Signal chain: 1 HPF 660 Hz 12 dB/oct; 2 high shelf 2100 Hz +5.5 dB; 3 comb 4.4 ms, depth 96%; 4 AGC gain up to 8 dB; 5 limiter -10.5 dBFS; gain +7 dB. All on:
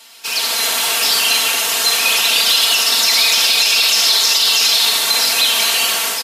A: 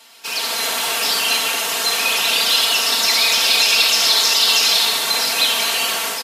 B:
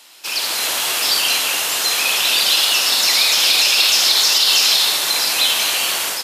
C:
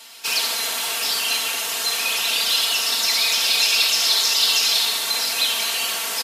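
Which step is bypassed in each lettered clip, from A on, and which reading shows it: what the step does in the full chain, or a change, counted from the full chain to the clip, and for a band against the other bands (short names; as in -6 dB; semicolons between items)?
2, 8 kHz band -3.5 dB; 3, crest factor change +2.0 dB; 4, crest factor change +5.0 dB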